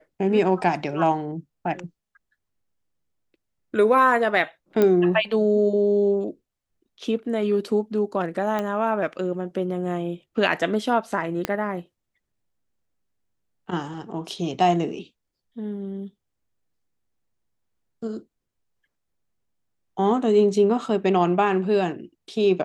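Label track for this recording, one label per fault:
4.820000	4.820000	pop -9 dBFS
8.590000	8.590000	pop -14 dBFS
11.450000	11.450000	pop -9 dBFS

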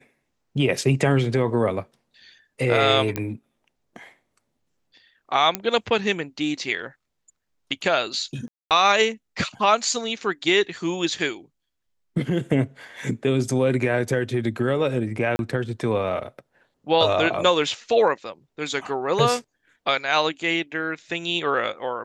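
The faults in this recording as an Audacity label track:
3.160000	3.160000	pop -11 dBFS
5.550000	5.550000	pop -7 dBFS
8.480000	8.710000	gap 0.228 s
15.360000	15.390000	gap 31 ms

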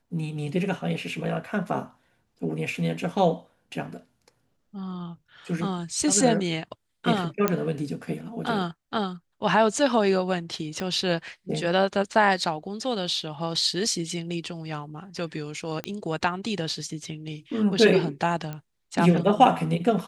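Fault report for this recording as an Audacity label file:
7.480000	7.480000	pop -8 dBFS
10.800000	10.800000	pop -17 dBFS
15.840000	15.840000	pop -15 dBFS
18.530000	18.530000	pop -21 dBFS

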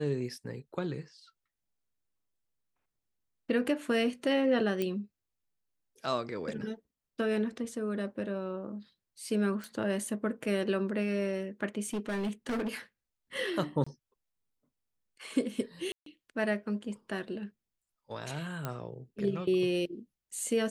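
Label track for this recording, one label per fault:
4.820000	4.820000	pop -19 dBFS
9.640000	9.640000	pop
11.840000	12.770000	clipped -29.5 dBFS
13.840000	13.870000	gap 25 ms
15.920000	16.060000	gap 0.143 s
18.650000	18.650000	pop -20 dBFS

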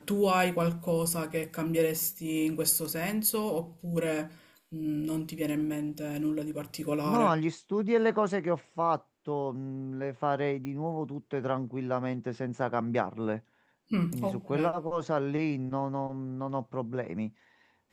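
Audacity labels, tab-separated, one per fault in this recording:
10.650000	10.650000	pop -25 dBFS

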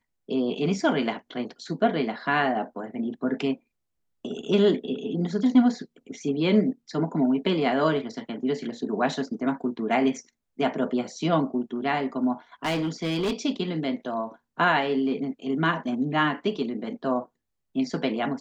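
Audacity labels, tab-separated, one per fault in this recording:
12.650000	13.330000	clipped -22.5 dBFS

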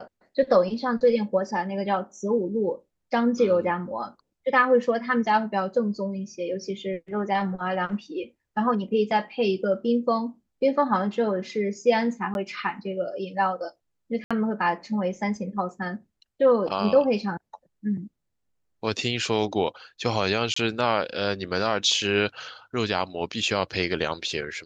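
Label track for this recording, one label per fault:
12.340000	12.350000	gap 11 ms
14.240000	14.310000	gap 66 ms
20.540000	20.560000	gap 24 ms

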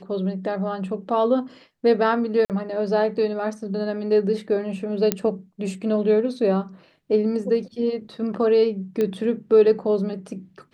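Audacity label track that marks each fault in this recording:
2.450000	2.500000	gap 48 ms
5.120000	5.120000	pop -5 dBFS
9.010000	9.010000	pop -13 dBFS

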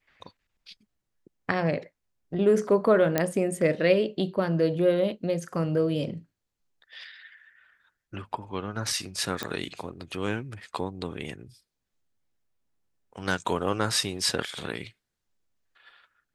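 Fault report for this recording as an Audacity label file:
3.180000	3.180000	pop -8 dBFS
9.430000	9.430000	pop -14 dBFS

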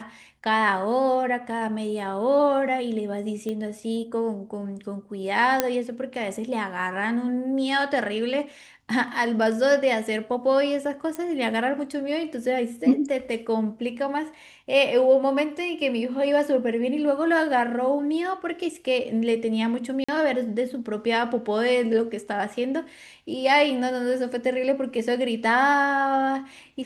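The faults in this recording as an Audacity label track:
3.490000	3.490000	pop -20 dBFS
5.600000	5.600000	pop -4 dBFS
11.150000	11.150000	pop -18 dBFS
20.040000	20.090000	gap 45 ms

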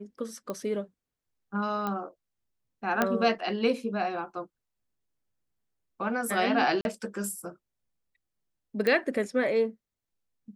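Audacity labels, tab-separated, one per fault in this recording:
0.500000	0.500000	pop -21 dBFS
1.870000	1.870000	pop -18 dBFS
3.020000	3.020000	pop -10 dBFS
6.810000	6.850000	gap 41 ms
8.870000	8.870000	pop -15 dBFS

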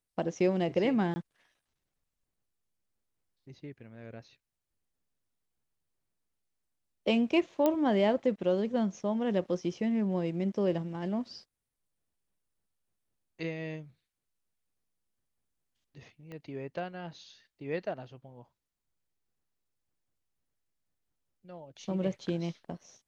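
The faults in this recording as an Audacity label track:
1.140000	1.160000	gap 20 ms
7.660000	7.660000	pop -14 dBFS
16.320000	16.320000	pop -32 dBFS

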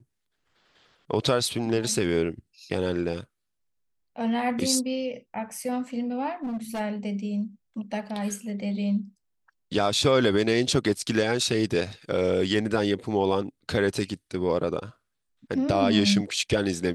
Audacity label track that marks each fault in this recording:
6.430000	6.810000	clipped -27.5 dBFS

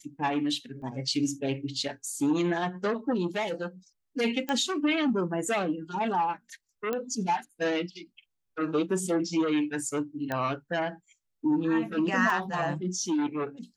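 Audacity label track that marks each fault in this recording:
0.820000	0.820000	gap 4.4 ms
4.490000	4.490000	pop -17 dBFS
6.930000	6.930000	pop -17 dBFS
10.320000	10.320000	pop -17 dBFS
12.300000	12.300000	gap 3.4 ms

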